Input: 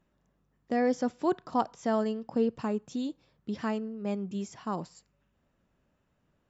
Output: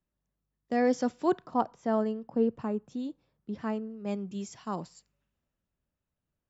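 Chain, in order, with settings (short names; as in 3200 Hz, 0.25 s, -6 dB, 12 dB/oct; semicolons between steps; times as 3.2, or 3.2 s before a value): 1.46–3.9 high shelf 2300 Hz -10 dB; three-band expander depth 40%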